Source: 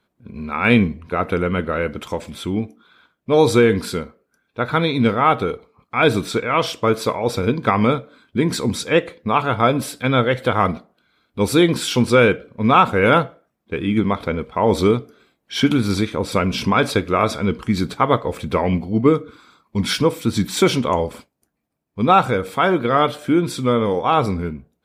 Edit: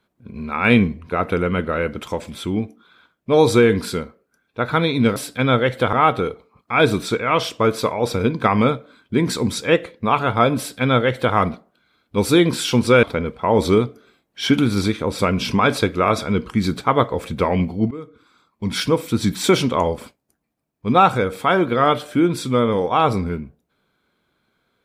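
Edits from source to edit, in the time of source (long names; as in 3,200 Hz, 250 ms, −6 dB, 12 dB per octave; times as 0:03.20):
0:09.81–0:10.58: duplicate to 0:05.16
0:12.26–0:14.16: remove
0:19.04–0:20.19: fade in, from −23 dB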